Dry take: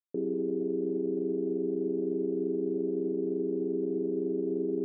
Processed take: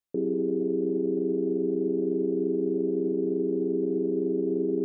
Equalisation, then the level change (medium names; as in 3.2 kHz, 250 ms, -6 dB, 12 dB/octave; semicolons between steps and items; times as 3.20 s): bass shelf 79 Hz +8 dB; +3.5 dB